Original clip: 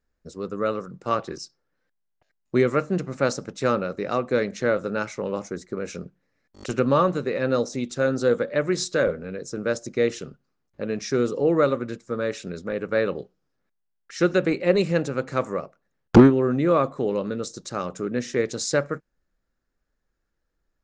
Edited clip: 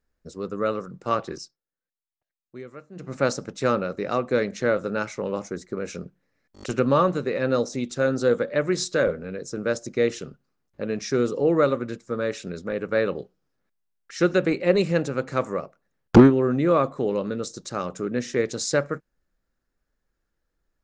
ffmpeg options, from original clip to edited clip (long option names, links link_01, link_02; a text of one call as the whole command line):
ffmpeg -i in.wav -filter_complex "[0:a]asplit=3[link_01][link_02][link_03];[link_01]atrim=end=1.57,asetpts=PTS-STARTPTS,afade=type=out:start_time=1.38:duration=0.19:silence=0.105925[link_04];[link_02]atrim=start=1.57:end=2.95,asetpts=PTS-STARTPTS,volume=-19.5dB[link_05];[link_03]atrim=start=2.95,asetpts=PTS-STARTPTS,afade=type=in:duration=0.19:silence=0.105925[link_06];[link_04][link_05][link_06]concat=n=3:v=0:a=1" out.wav